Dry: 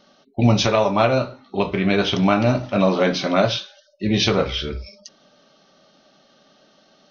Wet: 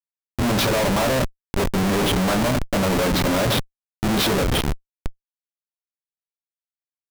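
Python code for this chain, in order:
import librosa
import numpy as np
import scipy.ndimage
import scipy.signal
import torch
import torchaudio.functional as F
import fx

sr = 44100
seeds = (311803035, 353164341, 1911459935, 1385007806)

y = scipy.signal.sosfilt(scipy.signal.butter(2, 140.0, 'highpass', fs=sr, output='sos'), x)
y = fx.peak_eq(y, sr, hz=4100.0, db=3.5, octaves=0.23)
y = fx.schmitt(y, sr, flips_db=-22.5)
y = y * 10.0 ** (2.5 / 20.0)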